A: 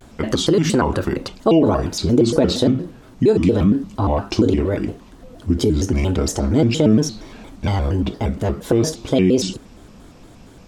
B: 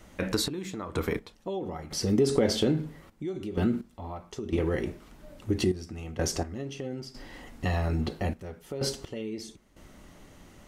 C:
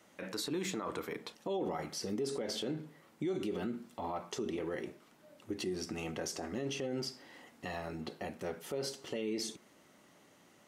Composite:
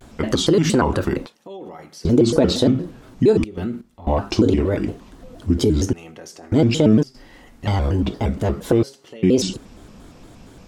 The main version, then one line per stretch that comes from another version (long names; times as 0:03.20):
A
0:01.26–0:02.05: punch in from C
0:03.44–0:04.07: punch in from B
0:05.93–0:06.52: punch in from C
0:07.03–0:07.67: punch in from B
0:08.83–0:09.23: punch in from C